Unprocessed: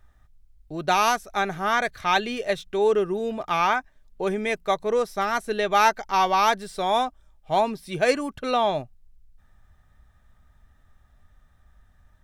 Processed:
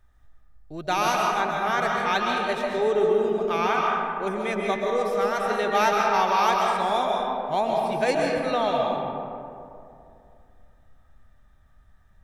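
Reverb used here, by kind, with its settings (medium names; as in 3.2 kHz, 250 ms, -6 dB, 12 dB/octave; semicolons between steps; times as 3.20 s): algorithmic reverb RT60 2.6 s, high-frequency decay 0.4×, pre-delay 95 ms, DRR -1.5 dB; trim -4 dB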